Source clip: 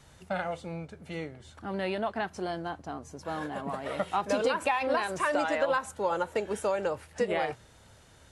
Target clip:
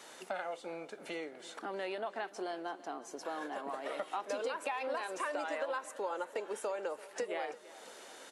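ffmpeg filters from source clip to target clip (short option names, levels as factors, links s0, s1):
-filter_complex "[0:a]highpass=f=300:w=0.5412,highpass=f=300:w=1.3066,acompressor=threshold=0.00316:ratio=2.5,asplit=2[s0][s1];[s1]aecho=0:1:337|674|1011|1348|1685:0.126|0.0755|0.0453|0.0272|0.0163[s2];[s0][s2]amix=inputs=2:normalize=0,volume=2.24"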